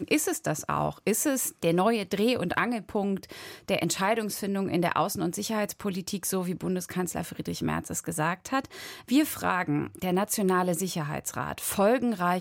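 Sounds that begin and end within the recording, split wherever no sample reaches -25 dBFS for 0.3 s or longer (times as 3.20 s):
3.70–8.65 s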